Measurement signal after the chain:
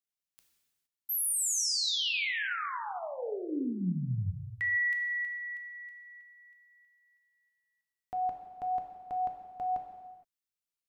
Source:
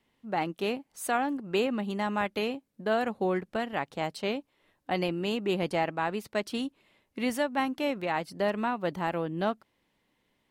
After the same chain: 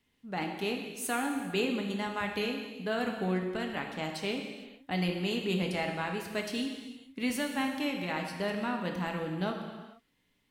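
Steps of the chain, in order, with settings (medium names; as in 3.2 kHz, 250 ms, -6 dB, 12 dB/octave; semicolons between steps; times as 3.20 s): peaking EQ 690 Hz -8.5 dB 2.2 oct; gated-style reverb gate 490 ms falling, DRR 2 dB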